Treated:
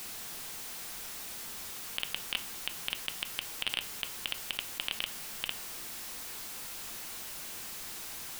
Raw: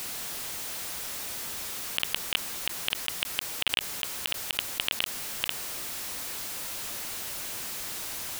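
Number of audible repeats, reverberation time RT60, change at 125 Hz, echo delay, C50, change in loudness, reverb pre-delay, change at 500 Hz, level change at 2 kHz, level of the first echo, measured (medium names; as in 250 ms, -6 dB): no echo, 0.40 s, -6.5 dB, no echo, 17.5 dB, -6.0 dB, 3 ms, -7.0 dB, -6.0 dB, no echo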